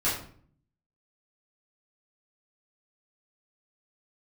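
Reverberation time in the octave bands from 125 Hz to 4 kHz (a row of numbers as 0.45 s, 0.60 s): 0.90 s, 0.80 s, 0.55 s, 0.50 s, 0.45 s, 0.35 s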